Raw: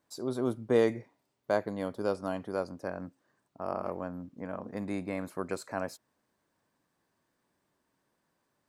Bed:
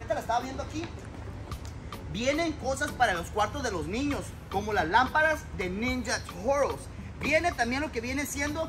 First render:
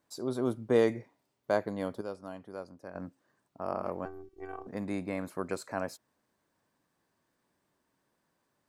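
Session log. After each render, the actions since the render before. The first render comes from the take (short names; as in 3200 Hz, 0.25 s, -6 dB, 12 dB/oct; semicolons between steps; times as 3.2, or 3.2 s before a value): 2.01–2.95 gain -9 dB; 4.05–4.67 robotiser 383 Hz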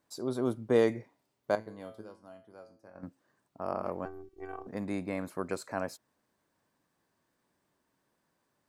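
1.55–3.03 resonator 110 Hz, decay 0.43 s, mix 80%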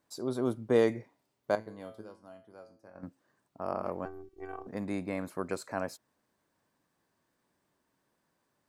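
nothing audible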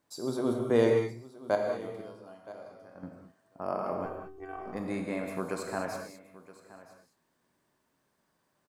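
echo 0.971 s -18 dB; non-linear reverb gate 0.24 s flat, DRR 1.5 dB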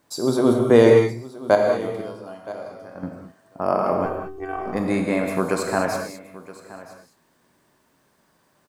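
gain +12 dB; limiter -2 dBFS, peak gain reduction 2.5 dB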